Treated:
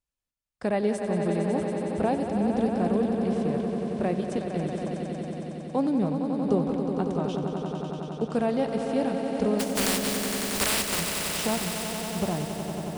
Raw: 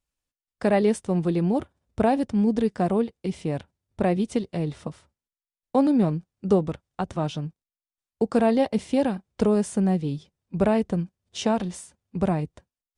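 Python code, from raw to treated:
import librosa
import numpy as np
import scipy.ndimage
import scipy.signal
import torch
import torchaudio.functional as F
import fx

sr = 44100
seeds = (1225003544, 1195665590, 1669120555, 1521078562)

y = fx.spec_flatten(x, sr, power=0.16, at=(9.59, 10.99), fade=0.02)
y = fx.echo_swell(y, sr, ms=92, loudest=5, wet_db=-9)
y = F.gain(torch.from_numpy(y), -5.5).numpy()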